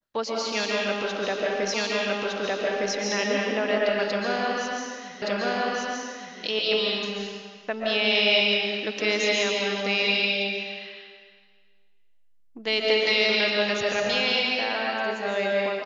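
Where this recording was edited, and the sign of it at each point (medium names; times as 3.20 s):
1.74 s: repeat of the last 1.21 s
5.22 s: repeat of the last 1.17 s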